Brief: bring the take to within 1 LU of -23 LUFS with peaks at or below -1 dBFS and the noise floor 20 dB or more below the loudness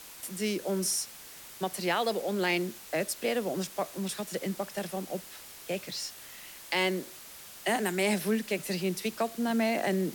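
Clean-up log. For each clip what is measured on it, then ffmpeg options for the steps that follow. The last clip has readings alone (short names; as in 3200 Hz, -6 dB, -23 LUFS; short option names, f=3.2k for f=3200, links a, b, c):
noise floor -48 dBFS; noise floor target -52 dBFS; loudness -31.5 LUFS; peak -15.0 dBFS; loudness target -23.0 LUFS
-> -af "afftdn=nr=6:nf=-48"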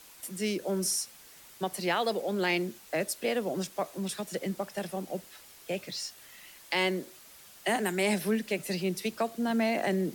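noise floor -53 dBFS; loudness -31.5 LUFS; peak -15.5 dBFS; loudness target -23.0 LUFS
-> -af "volume=8.5dB"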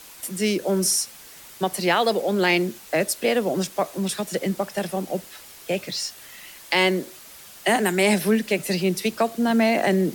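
loudness -23.0 LUFS; peak -7.0 dBFS; noise floor -45 dBFS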